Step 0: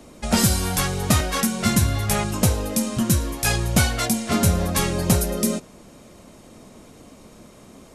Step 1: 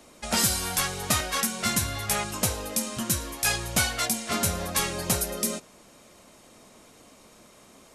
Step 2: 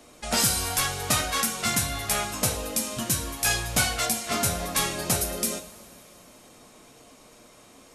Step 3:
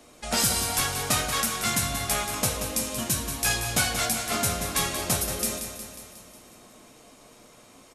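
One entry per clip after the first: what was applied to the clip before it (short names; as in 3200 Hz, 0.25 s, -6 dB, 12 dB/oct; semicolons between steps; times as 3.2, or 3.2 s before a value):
low shelf 470 Hz -11.5 dB; gain -1.5 dB
two-slope reverb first 0.41 s, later 3.4 s, from -20 dB, DRR 5 dB
feedback echo 0.181 s, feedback 59%, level -8.5 dB; gain -1 dB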